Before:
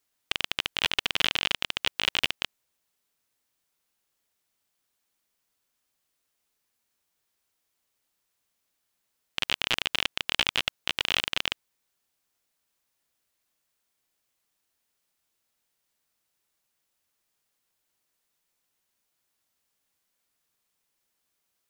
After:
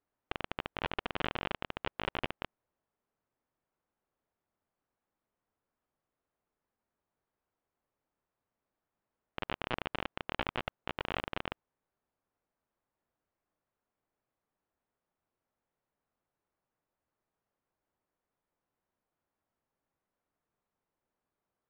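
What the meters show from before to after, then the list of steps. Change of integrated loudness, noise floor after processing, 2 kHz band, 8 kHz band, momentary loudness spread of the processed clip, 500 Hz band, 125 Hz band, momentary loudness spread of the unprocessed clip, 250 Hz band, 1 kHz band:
-12.0 dB, under -85 dBFS, -11.0 dB, under -30 dB, 6 LU, +0.5 dB, +1.0 dB, 7 LU, +1.0 dB, -1.5 dB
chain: LPF 1100 Hz 12 dB/oct; gain +1 dB

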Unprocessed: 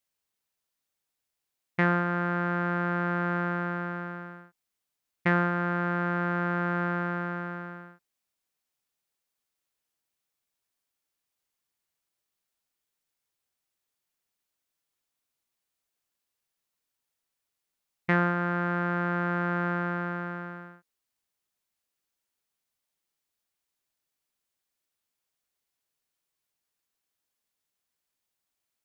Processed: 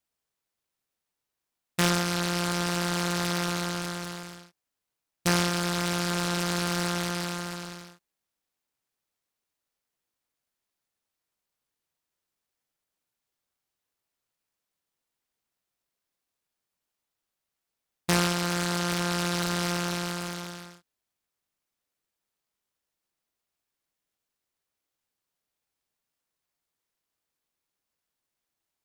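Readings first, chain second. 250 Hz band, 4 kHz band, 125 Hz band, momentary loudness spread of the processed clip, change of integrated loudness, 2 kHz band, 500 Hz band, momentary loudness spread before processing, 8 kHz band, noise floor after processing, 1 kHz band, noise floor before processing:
0.0 dB, +21.5 dB, 0.0 dB, 13 LU, +0.5 dB, -2.5 dB, 0.0 dB, 13 LU, n/a, under -85 dBFS, -2.0 dB, -85 dBFS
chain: noise-modulated delay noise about 3100 Hz, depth 0.12 ms

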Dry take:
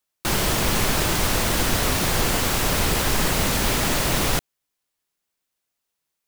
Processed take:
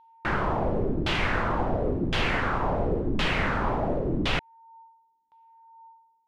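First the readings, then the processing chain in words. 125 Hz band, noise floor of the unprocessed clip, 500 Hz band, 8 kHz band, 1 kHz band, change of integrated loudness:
-4.0 dB, -81 dBFS, -1.5 dB, -27.5 dB, -2.5 dB, -6.0 dB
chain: whine 910 Hz -50 dBFS; LFO low-pass saw down 0.94 Hz 260–3400 Hz; gain -4.5 dB

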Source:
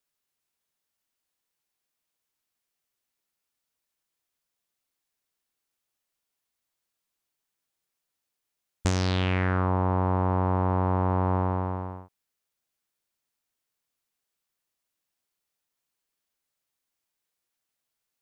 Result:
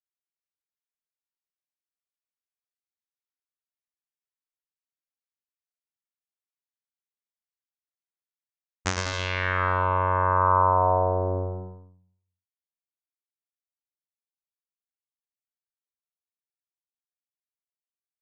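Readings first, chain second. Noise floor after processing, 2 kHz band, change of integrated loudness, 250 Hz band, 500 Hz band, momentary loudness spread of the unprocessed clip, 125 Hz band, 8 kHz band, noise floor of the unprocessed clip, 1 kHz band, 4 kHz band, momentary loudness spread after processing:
under -85 dBFS, +6.5 dB, +2.5 dB, -9.5 dB, +3.5 dB, 7 LU, -4.0 dB, +3.5 dB, -84 dBFS, +6.5 dB, +1.5 dB, 14 LU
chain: gate -24 dBFS, range -27 dB; bell 1600 Hz +13.5 dB 2.5 oct; low-pass sweep 6500 Hz -> 100 Hz, 9.29–12.24; on a send: bouncing-ball echo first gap 0.11 s, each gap 0.8×, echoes 5; on the sum: gain -5.5 dB

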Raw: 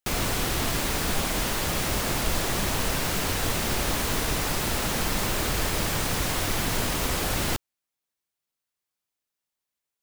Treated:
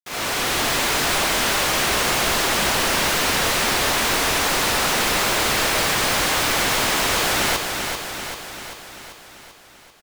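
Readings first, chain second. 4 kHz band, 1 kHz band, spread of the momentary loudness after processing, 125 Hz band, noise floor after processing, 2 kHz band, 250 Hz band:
+9.5 dB, +9.0 dB, 10 LU, -2.0 dB, -48 dBFS, +10.5 dB, +2.5 dB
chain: opening faded in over 0.60 s; crossover distortion -48.5 dBFS; overdrive pedal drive 26 dB, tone 5200 Hz, clips at -13 dBFS; on a send: feedback echo 0.39 s, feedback 60%, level -6 dB

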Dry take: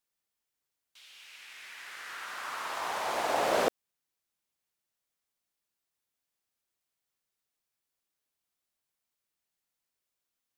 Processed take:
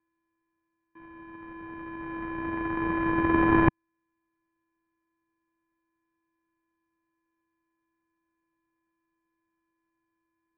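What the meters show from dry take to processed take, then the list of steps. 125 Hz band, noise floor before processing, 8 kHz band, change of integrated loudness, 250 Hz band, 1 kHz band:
+22.0 dB, under -85 dBFS, under -35 dB, +6.0 dB, +19.0 dB, +3.0 dB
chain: sample sorter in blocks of 64 samples; mistuned SSB -360 Hz 200–2400 Hz; gain +7.5 dB

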